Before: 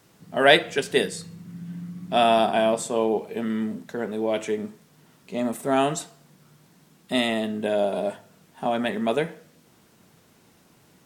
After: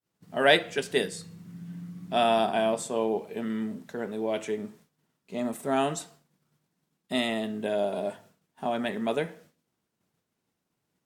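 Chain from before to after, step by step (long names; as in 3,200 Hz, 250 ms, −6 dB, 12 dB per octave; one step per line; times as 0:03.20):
downward expander −45 dBFS
level −4.5 dB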